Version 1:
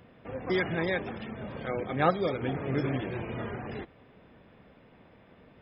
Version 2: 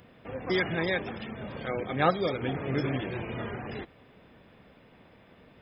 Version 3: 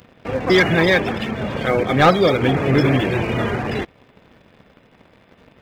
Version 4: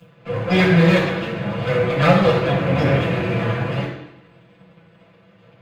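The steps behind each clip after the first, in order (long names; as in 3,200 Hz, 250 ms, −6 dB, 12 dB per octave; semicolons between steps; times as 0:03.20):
high-shelf EQ 3,600 Hz +9 dB
leveller curve on the samples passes 2; level +7 dB
lower of the sound and its delayed copy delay 6 ms; flanger 0.51 Hz, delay 6.1 ms, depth 6.8 ms, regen +54%; convolution reverb RT60 0.85 s, pre-delay 3 ms, DRR −6 dB; level −13 dB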